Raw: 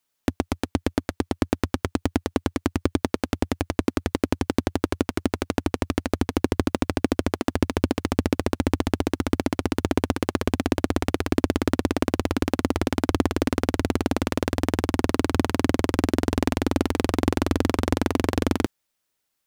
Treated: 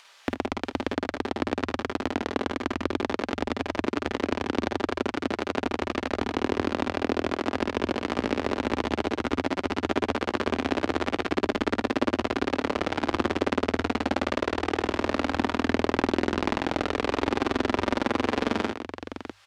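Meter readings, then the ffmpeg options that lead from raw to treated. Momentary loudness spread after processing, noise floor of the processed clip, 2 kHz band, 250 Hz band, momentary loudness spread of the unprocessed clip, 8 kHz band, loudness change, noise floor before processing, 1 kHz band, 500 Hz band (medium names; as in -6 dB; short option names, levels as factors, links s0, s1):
4 LU, -50 dBFS, +2.0 dB, -4.0 dB, 4 LU, -8.5 dB, -2.5 dB, -77 dBFS, +1.5 dB, -1.0 dB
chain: -filter_complex "[0:a]lowpass=4000,lowshelf=f=280:g=-12,bandreject=f=50:t=h:w=6,bandreject=f=100:t=h:w=6,acrossover=split=470[s0][s1];[s1]acompressor=mode=upward:threshold=0.0224:ratio=2.5[s2];[s0][s2]amix=inputs=2:normalize=0,aecho=1:1:49|54|76|173|650:0.531|0.501|0.178|0.266|0.335"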